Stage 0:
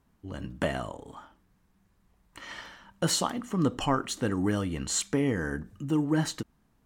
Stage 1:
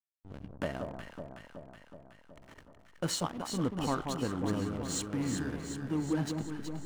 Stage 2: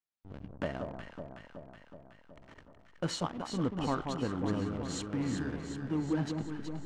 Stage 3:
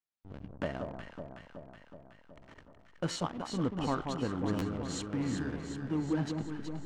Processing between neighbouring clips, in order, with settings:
healed spectral selection 0:04.71–0:05.50, 330–830 Hz; slack as between gear wheels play −31.5 dBFS; delay that swaps between a low-pass and a high-pass 186 ms, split 1,200 Hz, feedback 79%, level −4.5 dB; level −6 dB
high-frequency loss of the air 82 metres
buffer that repeats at 0:01.42/0:03.12/0:04.58, samples 512, times 2

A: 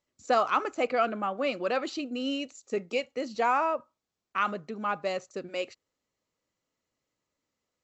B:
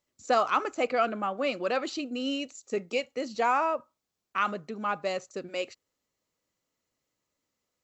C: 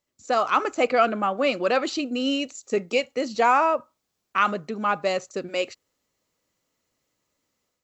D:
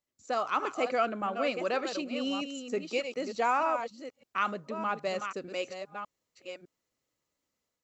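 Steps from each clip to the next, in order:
high-shelf EQ 6,800 Hz +6 dB
automatic gain control gain up to 6.5 dB
delay that plays each chunk backwards 605 ms, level −8 dB; level −8.5 dB

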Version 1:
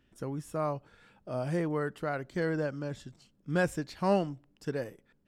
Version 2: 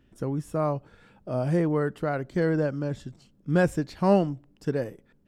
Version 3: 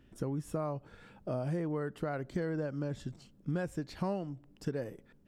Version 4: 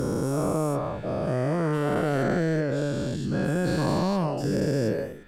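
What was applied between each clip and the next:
tilt shelving filter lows +3.5 dB, about 800 Hz; level +4.5 dB
downward compressor 6 to 1, threshold −32 dBFS, peak gain reduction 16.5 dB
every bin's largest magnitude spread in time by 480 ms; level +3.5 dB

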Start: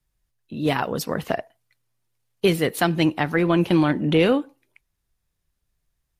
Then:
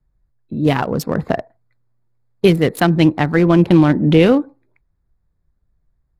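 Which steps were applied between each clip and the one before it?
adaptive Wiener filter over 15 samples
low-shelf EQ 290 Hz +7 dB
level +4 dB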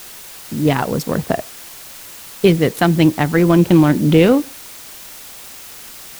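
bit-depth reduction 6 bits, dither triangular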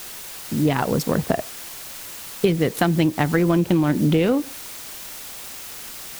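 downward compressor 6 to 1, threshold −15 dBFS, peak gain reduction 8.5 dB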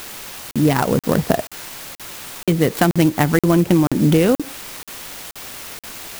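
regular buffer underruns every 0.48 s, samples 2,048, zero, from 0:00.51
converter with an unsteady clock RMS 0.041 ms
level +4 dB

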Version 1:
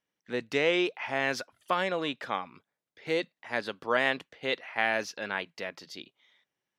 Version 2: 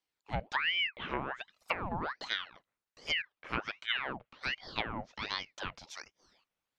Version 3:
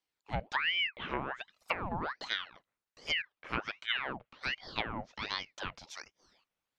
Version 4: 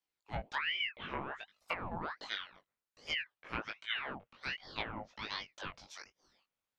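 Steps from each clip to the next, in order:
treble cut that deepens with the level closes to 510 Hz, closed at −24.5 dBFS; ring modulator whose carrier an LFO sweeps 1,500 Hz, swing 80%, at 1.3 Hz
no processing that can be heard
chorus effect 0.56 Hz, delay 18 ms, depth 3.3 ms; level −1 dB

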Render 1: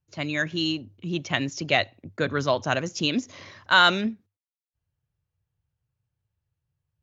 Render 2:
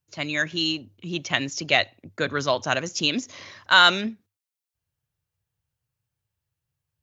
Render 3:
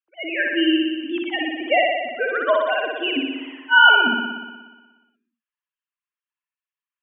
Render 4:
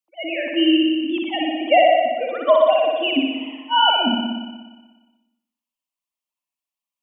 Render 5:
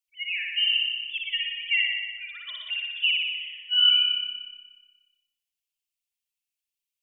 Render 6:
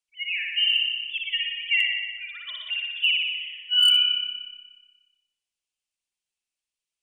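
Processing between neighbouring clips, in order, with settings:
spectral tilt +1.5 dB per octave; level +1 dB
three sine waves on the formant tracks; on a send: flutter between parallel walls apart 10.3 metres, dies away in 1.3 s; on the sum: level +1 dB
phaser with its sweep stopped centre 420 Hz, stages 6; on a send at −9 dB: convolution reverb RT60 0.70 s, pre-delay 65 ms; on the sum: level +5.5 dB
inverse Chebyshev band-stop filter 170–950 Hz, stop band 50 dB; level +1.5 dB
downsampling to 22,050 Hz; gain into a clipping stage and back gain 14.5 dB; level +1.5 dB

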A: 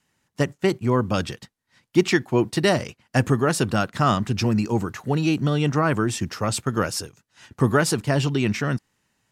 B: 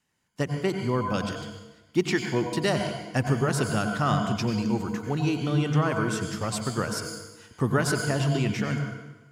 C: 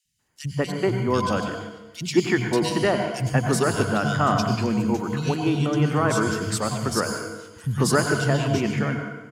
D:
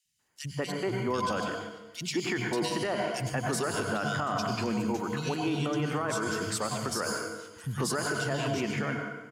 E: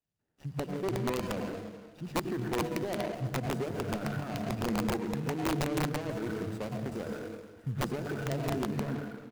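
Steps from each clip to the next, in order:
on a send at −4.5 dB: EQ curve with evenly spaced ripples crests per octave 1.8, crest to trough 13 dB + convolution reverb RT60 1.1 s, pre-delay 82 ms; on the sum: level −6 dB
three-band delay without the direct sound highs, lows, mids 50/190 ms, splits 170/2,800 Hz; level +5 dB
low-shelf EQ 210 Hz −9.5 dB; brickwall limiter −19 dBFS, peak gain reduction 10 dB; level −2 dB
running median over 41 samples; single-tap delay 340 ms −16.5 dB; wrap-around overflow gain 24 dB

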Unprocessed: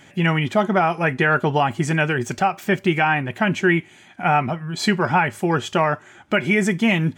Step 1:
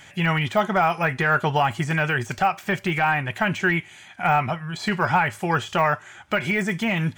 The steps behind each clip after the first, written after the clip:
de-essing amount 95%
parametric band 290 Hz −12.5 dB 1.9 octaves
level +4 dB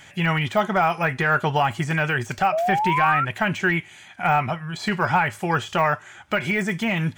sound drawn into the spectrogram rise, 0:02.52–0:03.25, 610–1,400 Hz −22 dBFS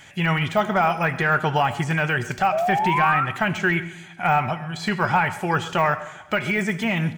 repeating echo 133 ms, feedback 46%, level −19.5 dB
on a send at −15 dB: convolution reverb RT60 0.75 s, pre-delay 60 ms

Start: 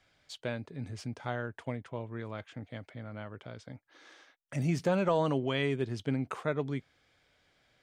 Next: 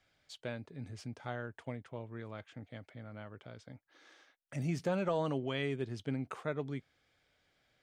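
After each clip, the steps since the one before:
notch filter 1,000 Hz, Q 20
level −5 dB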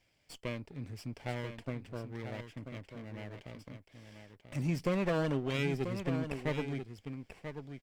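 lower of the sound and its delayed copy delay 0.39 ms
single-tap delay 988 ms −8.5 dB
level +2 dB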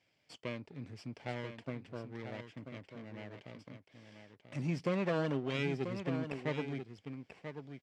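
band-pass filter 120–6,000 Hz
level −1.5 dB

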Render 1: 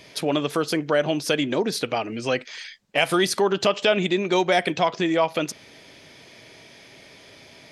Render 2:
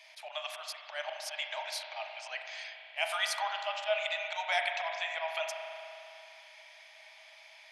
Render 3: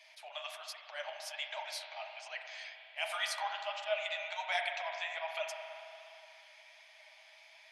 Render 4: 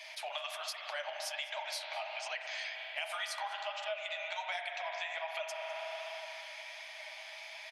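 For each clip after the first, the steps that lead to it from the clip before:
Chebyshev high-pass with heavy ripple 610 Hz, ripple 6 dB; volume swells 107 ms; spring reverb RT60 2.9 s, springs 37 ms, chirp 55 ms, DRR 3.5 dB; level −5 dB
flanger 1.3 Hz, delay 4.1 ms, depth 9.7 ms, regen +41%
downward compressor 6 to 1, threshold −48 dBFS, peak gain reduction 18 dB; slap from a distant wall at 35 metres, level −17 dB; level +11 dB

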